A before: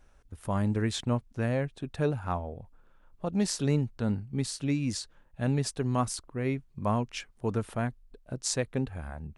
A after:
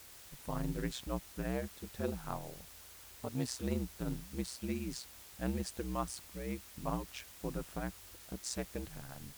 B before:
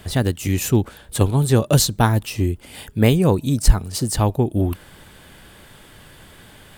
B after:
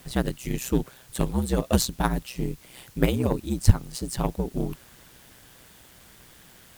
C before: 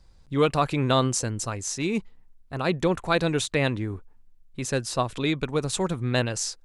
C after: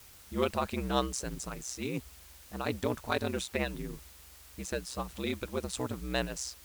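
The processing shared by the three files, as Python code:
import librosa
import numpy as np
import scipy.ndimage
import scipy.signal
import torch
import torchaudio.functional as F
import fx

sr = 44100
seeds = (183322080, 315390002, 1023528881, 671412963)

y = x * np.sin(2.0 * np.pi * 63.0 * np.arange(len(x)) / sr)
y = fx.quant_dither(y, sr, seeds[0], bits=8, dither='triangular')
y = fx.cheby_harmonics(y, sr, harmonics=(3, 7), levels_db=(-17, -37), full_scale_db=-2.0)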